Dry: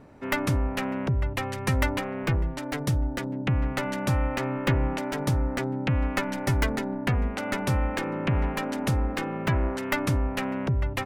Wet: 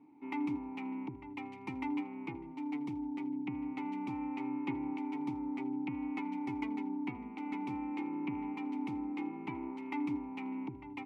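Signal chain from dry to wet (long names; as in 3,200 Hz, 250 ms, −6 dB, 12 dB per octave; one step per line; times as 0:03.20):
formant filter u
low-shelf EQ 70 Hz −9.5 dB
on a send: tape delay 80 ms, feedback 48%, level −19 dB, low-pass 5,300 Hz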